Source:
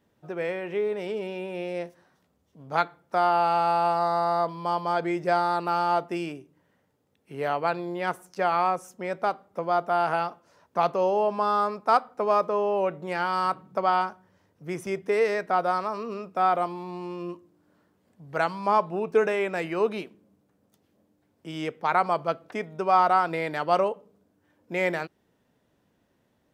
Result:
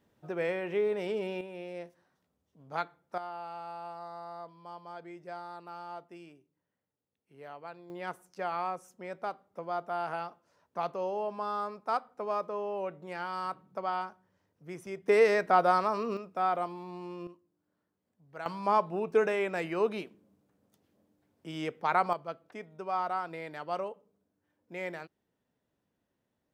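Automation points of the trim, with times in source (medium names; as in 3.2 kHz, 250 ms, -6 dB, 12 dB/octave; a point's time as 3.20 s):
-2 dB
from 1.41 s -9.5 dB
from 3.18 s -19 dB
from 7.90 s -10 dB
from 15.08 s +0.5 dB
from 16.17 s -6.5 dB
from 17.27 s -16 dB
from 18.46 s -4 dB
from 22.13 s -12 dB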